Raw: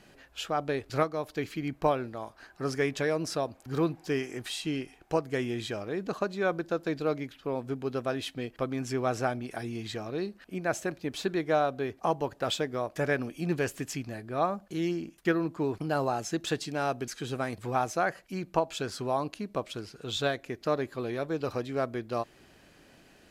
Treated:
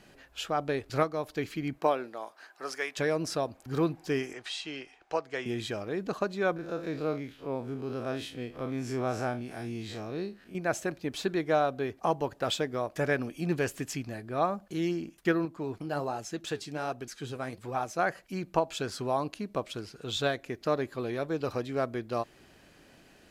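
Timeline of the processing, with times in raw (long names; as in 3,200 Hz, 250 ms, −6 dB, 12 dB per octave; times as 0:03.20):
0:01.78–0:02.96: high-pass filter 240 Hz → 830 Hz
0:04.33–0:05.46: three-way crossover with the lows and the highs turned down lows −15 dB, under 450 Hz, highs −23 dB, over 7,400 Hz
0:06.56–0:10.55: spectrum smeared in time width 82 ms
0:15.45–0:17.99: flanger 1.3 Hz, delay 1 ms, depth 9.2 ms, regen +66%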